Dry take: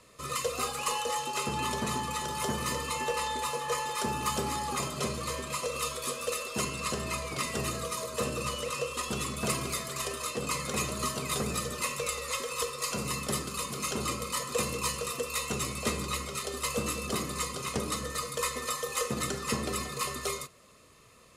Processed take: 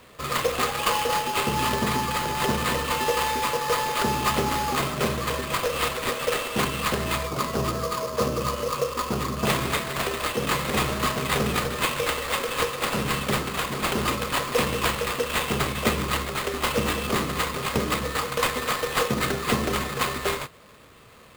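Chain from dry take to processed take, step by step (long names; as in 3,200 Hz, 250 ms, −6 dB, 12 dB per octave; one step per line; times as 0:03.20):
0:07.27–0:09.45: high shelf with overshoot 1,600 Hz −7 dB, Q 1.5
sample-rate reduction 5,800 Hz, jitter 20%
level +7.5 dB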